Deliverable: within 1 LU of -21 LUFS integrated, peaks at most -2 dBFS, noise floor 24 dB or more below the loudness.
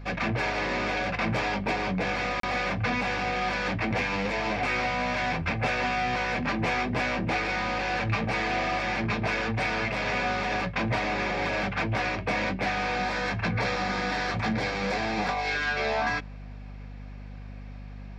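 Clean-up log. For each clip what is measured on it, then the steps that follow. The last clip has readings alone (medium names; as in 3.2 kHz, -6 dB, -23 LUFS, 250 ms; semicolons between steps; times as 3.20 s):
dropouts 1; longest dropout 33 ms; hum 50 Hz; highest harmonic 250 Hz; hum level -39 dBFS; loudness -27.5 LUFS; peak level -15.0 dBFS; loudness target -21.0 LUFS
-> interpolate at 2.40 s, 33 ms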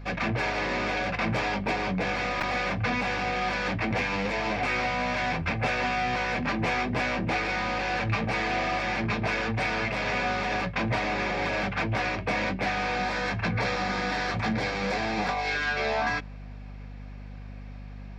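dropouts 0; hum 50 Hz; highest harmonic 250 Hz; hum level -39 dBFS
-> hum notches 50/100/150/200/250 Hz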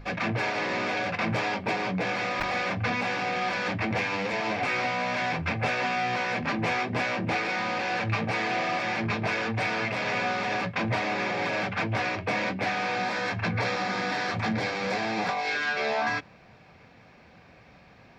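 hum not found; loudness -28.0 LUFS; peak level -15.0 dBFS; loudness target -21.0 LUFS
-> trim +7 dB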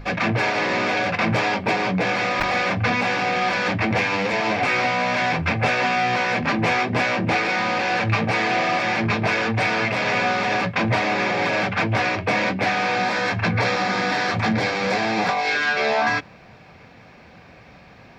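loudness -21.0 LUFS; peak level -8.0 dBFS; noise floor -47 dBFS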